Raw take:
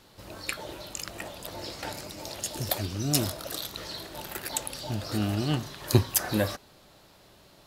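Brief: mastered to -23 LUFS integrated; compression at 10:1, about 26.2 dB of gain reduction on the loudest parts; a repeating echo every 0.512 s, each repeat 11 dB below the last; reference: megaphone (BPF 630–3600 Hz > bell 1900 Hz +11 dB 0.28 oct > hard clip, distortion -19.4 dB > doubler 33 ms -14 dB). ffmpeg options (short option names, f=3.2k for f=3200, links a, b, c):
-filter_complex "[0:a]acompressor=threshold=-42dB:ratio=10,highpass=630,lowpass=3.6k,equalizer=f=1.9k:t=o:w=0.28:g=11,aecho=1:1:512|1024|1536:0.282|0.0789|0.0221,asoftclip=type=hard:threshold=-33dB,asplit=2[a][b];[b]adelay=33,volume=-14dB[c];[a][c]amix=inputs=2:normalize=0,volume=26dB"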